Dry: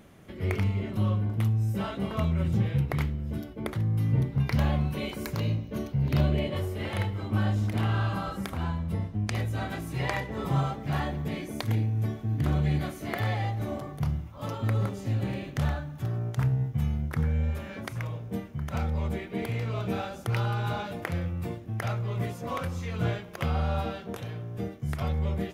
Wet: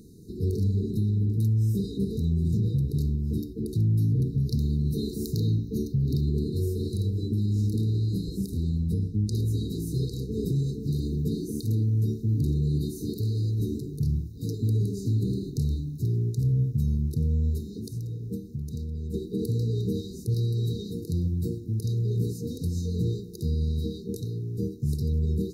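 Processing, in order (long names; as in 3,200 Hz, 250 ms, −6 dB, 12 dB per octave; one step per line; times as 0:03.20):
0:17.60–0:19.14: downward compressor 10 to 1, threshold −34 dBFS, peak gain reduction 9.5 dB
brickwall limiter −22.5 dBFS, peak gain reduction 10.5 dB
linear-phase brick-wall band-stop 480–3,700 Hz
level +5 dB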